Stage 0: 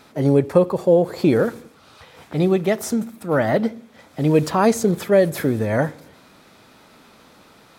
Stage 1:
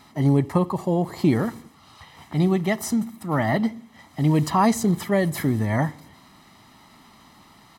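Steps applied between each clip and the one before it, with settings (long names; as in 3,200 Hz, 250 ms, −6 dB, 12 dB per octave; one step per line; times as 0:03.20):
comb filter 1 ms, depth 73%
level −3 dB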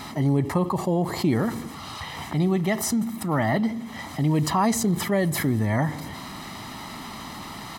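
envelope flattener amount 50%
level −4 dB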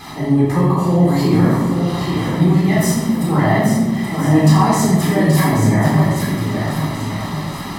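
feedback echo with a long and a short gap by turns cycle 1,380 ms, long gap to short 1.5 to 1, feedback 30%, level −6.5 dB
rectangular room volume 590 cubic metres, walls mixed, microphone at 3.8 metres
level −2.5 dB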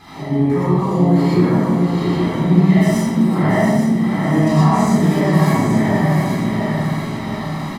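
high-shelf EQ 5,900 Hz −10 dB
single-tap delay 679 ms −7 dB
reverb whose tail is shaped and stops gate 140 ms rising, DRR −5.5 dB
level −7.5 dB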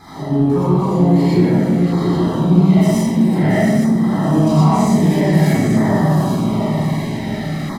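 auto-filter notch saw down 0.52 Hz 940–2,800 Hz
in parallel at −10.5 dB: hard clipping −17.5 dBFS, distortion −7 dB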